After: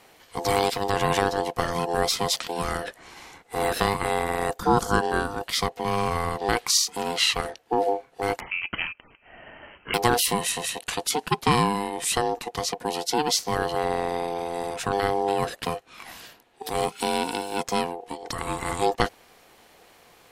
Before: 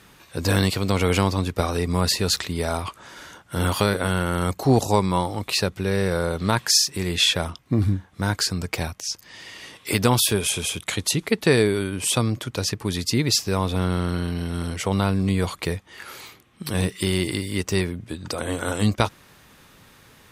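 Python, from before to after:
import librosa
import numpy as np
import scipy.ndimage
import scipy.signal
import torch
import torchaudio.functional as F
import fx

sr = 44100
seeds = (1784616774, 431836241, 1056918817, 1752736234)

y = x * np.sin(2.0 * np.pi * 600.0 * np.arange(len(x)) / sr)
y = fx.freq_invert(y, sr, carrier_hz=3100, at=(8.4, 9.94))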